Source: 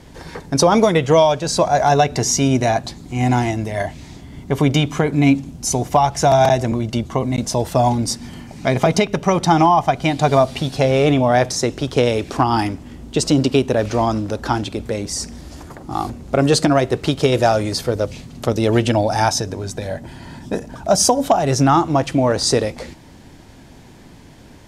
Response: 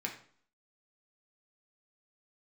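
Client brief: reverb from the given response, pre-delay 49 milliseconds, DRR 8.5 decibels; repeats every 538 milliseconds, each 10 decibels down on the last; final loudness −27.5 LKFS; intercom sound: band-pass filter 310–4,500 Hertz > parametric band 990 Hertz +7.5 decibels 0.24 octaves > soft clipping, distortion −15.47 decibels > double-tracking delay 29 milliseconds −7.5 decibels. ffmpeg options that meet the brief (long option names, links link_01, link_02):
-filter_complex "[0:a]aecho=1:1:538|1076|1614|2152:0.316|0.101|0.0324|0.0104,asplit=2[link_01][link_02];[1:a]atrim=start_sample=2205,adelay=49[link_03];[link_02][link_03]afir=irnorm=-1:irlink=0,volume=-11dB[link_04];[link_01][link_04]amix=inputs=2:normalize=0,highpass=310,lowpass=4500,equalizer=frequency=990:width_type=o:width=0.24:gain=7.5,asoftclip=threshold=-8dB,asplit=2[link_05][link_06];[link_06]adelay=29,volume=-7.5dB[link_07];[link_05][link_07]amix=inputs=2:normalize=0,volume=-8.5dB"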